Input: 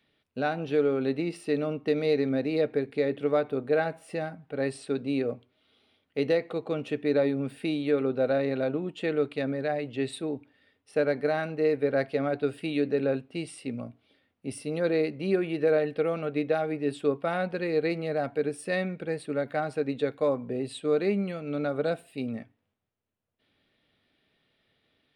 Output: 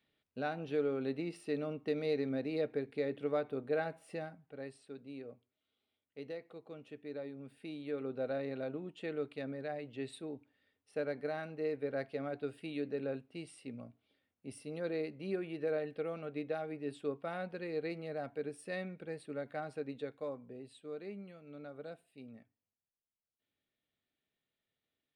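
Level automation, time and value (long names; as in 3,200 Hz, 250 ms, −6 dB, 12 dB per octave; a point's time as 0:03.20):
0:04.16 −9 dB
0:04.80 −19 dB
0:07.34 −19 dB
0:08.18 −11.5 dB
0:19.78 −11.5 dB
0:20.77 −19 dB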